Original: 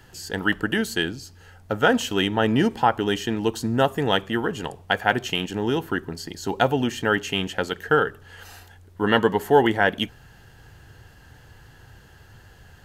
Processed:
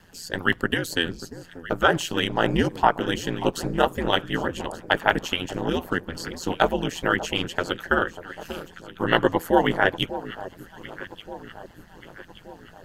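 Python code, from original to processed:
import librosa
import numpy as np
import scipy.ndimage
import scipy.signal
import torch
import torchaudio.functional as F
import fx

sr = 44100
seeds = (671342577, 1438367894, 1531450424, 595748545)

y = fx.echo_alternate(x, sr, ms=589, hz=1200.0, feedback_pct=69, wet_db=-12.5)
y = y * np.sin(2.0 * np.pi * 85.0 * np.arange(len(y)) / sr)
y = fx.hpss(y, sr, part='percussive', gain_db=9)
y = y * librosa.db_to_amplitude(-5.5)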